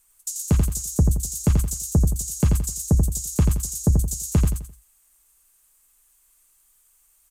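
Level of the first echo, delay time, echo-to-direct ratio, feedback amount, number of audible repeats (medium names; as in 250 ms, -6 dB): -4.5 dB, 86 ms, -4.0 dB, 33%, 4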